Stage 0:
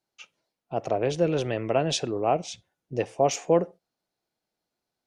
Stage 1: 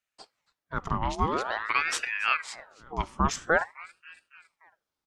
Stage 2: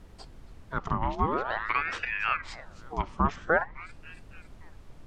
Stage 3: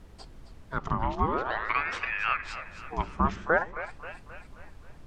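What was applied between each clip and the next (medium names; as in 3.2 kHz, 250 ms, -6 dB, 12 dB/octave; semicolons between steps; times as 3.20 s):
feedback delay 278 ms, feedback 59%, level -22.5 dB; ring modulator with a swept carrier 1.3 kHz, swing 65%, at 0.48 Hz
added noise brown -46 dBFS; low-pass that closes with the level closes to 2 kHz, closed at -23.5 dBFS
two-band feedback delay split 440 Hz, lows 81 ms, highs 266 ms, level -13 dB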